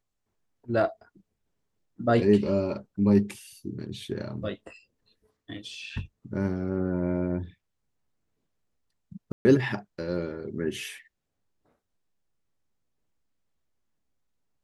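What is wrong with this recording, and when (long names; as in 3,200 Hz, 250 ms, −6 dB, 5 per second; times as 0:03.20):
0:09.32–0:09.45: drop-out 130 ms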